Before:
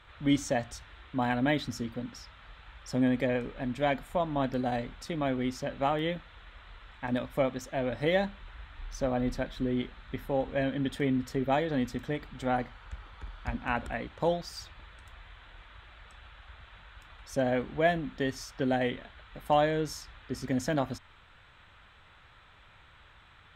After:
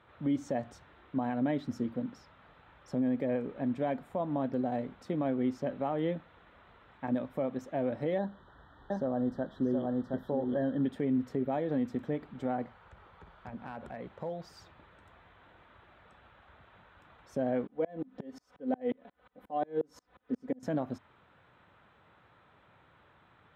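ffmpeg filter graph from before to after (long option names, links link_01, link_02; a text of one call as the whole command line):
ffmpeg -i in.wav -filter_complex "[0:a]asettb=1/sr,asplit=3[link_01][link_02][link_03];[link_01]atrim=end=8.184[link_04];[link_02]atrim=start=8.18:end=10.84,asetpts=PTS-STARTPTS,afade=type=in:duration=0.004:curve=qsin,afade=type=out:start_time=2.656:duration=0.004:curve=qsin,acrossover=split=3700[link_05][link_06];[link_06]acompressor=threshold=-54dB:ratio=4:attack=1:release=60[link_07];[link_05][link_07]amix=inputs=2:normalize=0,asuperstop=centerf=2400:order=12:qfactor=2.1,aecho=1:1:720:0.631,atrim=end_sample=117306[link_08];[link_03]atrim=start=10.836[link_09];[link_04][link_08]acrossfade=duration=0.004:curve1=hsin:curve2=qsin[link_10];[link_10][link_09]acrossfade=duration=0.004:curve1=qsin:curve2=hsin,asettb=1/sr,asplit=3[link_11][link_12][link_13];[link_11]atrim=end=12.664[link_14];[link_12]atrim=start=12.66:end=14.5,asetpts=PTS-STARTPTS,afade=type=in:duration=0.004:curve=qsin,afade=type=out:start_time=1.836:duration=0.004:curve=qsin,equalizer=frequency=280:width=3.8:gain=-11,acompressor=threshold=-37dB:ratio=3:attack=3.2:release=140:knee=1:detection=peak,asoftclip=type=hard:threshold=-32dB[link_15];[link_13]atrim=start=14.496[link_16];[link_14][link_15]acrossfade=duration=0.004:curve1=hsin:curve2=qsin[link_17];[link_17][link_16]acrossfade=duration=0.004:curve1=qsin:curve2=hsin,asettb=1/sr,asplit=3[link_18][link_19][link_20];[link_18]atrim=end=17.674[link_21];[link_19]atrim=start=17.67:end=20.63,asetpts=PTS-STARTPTS,afade=type=in:duration=0.004:curve=qsin,afade=type=out:start_time=2.956:duration=0.004:curve=qsin,equalizer=frequency=530:width=1.1:gain=5,aecho=1:1:4:0.7,atrim=end_sample=130536,aeval=exprs='val(0)*pow(10,-35*if(lt(mod(-5.6*n/s,1),2*abs(-5.6)/1000),1-mod(-5.6*n/s,1)/(2*abs(-5.6)/1000),(mod(-5.6*n/s,1)-2*abs(-5.6)/1000)/(1-2*abs(-5.6)/1000))/20)':channel_layout=same[link_22];[link_20]atrim=start=20.626[link_23];[link_21][link_22]acrossfade=duration=0.004:curve1=hsin:curve2=qsin[link_24];[link_24][link_23]acrossfade=duration=0.004:curve1=qsin:curve2=hsin,highpass=170,tiltshelf=frequency=1400:gain=9.5,alimiter=limit=-16.5dB:level=0:latency=1:release=160,volume=-5.5dB" out.wav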